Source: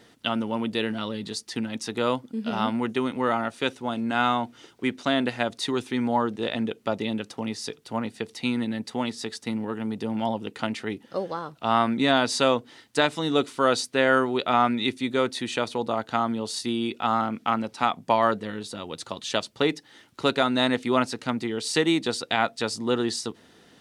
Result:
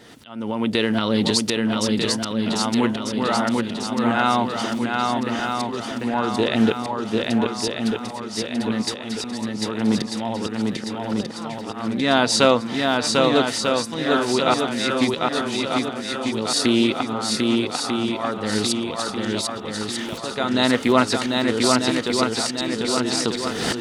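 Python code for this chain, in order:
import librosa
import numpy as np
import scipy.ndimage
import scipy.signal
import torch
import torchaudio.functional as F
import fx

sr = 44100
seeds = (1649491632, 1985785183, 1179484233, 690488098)

p1 = fx.recorder_agc(x, sr, target_db=-15.0, rise_db_per_s=54.0, max_gain_db=30)
p2 = fx.auto_swell(p1, sr, attack_ms=561.0)
p3 = p2 + fx.echo_swing(p2, sr, ms=1244, ratio=1.5, feedback_pct=50, wet_db=-3.0, dry=0)
p4 = fx.doppler_dist(p3, sr, depth_ms=0.12)
y = F.gain(torch.from_numpy(p4), 5.5).numpy()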